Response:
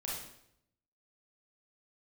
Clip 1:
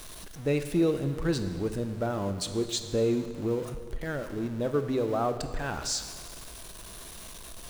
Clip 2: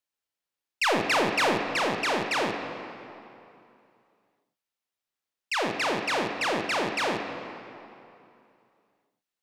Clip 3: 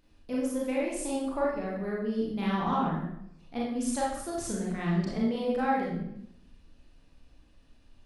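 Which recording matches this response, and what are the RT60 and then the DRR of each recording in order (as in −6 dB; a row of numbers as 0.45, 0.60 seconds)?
3; 1.9, 2.7, 0.75 seconds; 8.5, 4.5, −5.5 decibels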